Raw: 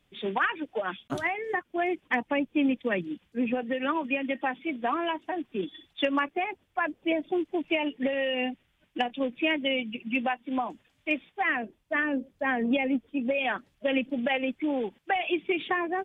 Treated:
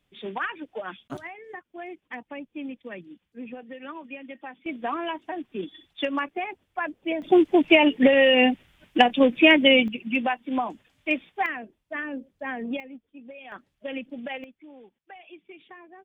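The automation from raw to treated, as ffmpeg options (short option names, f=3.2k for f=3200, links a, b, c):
-af "asetnsamples=n=441:p=0,asendcmd='1.17 volume volume -10.5dB;4.66 volume volume -1dB;7.22 volume volume 11dB;9.88 volume volume 3dB;11.46 volume volume -5dB;12.8 volume volume -16dB;13.52 volume volume -7dB;14.44 volume volume -19dB',volume=-3.5dB"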